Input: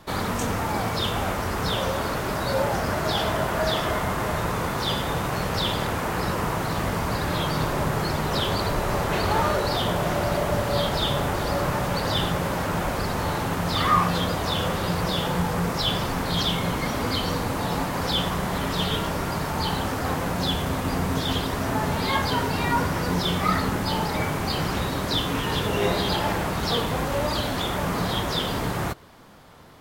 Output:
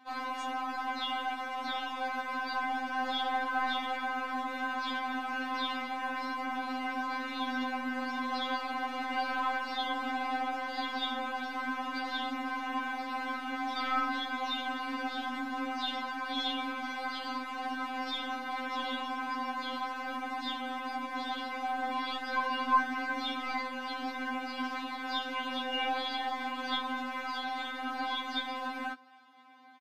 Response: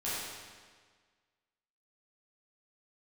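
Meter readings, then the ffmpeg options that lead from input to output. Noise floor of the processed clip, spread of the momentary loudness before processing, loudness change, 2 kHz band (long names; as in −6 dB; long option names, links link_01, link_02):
−40 dBFS, 3 LU, −9.5 dB, −4.5 dB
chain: -filter_complex "[0:a]aecho=1:1:6.2:0.94,afreqshift=100,acrossover=split=370 4100:gain=0.0708 1 0.1[link_01][link_02][link_03];[link_01][link_02][link_03]amix=inputs=3:normalize=0,aeval=exprs='0.422*(cos(1*acos(clip(val(0)/0.422,-1,1)))-cos(1*PI/2))+0.00596*(cos(6*acos(clip(val(0)/0.422,-1,1)))-cos(6*PI/2))':channel_layout=same,aresample=32000,aresample=44100,afftfilt=real='re*3.46*eq(mod(b,12),0)':imag='im*3.46*eq(mod(b,12),0)':win_size=2048:overlap=0.75,volume=-7dB"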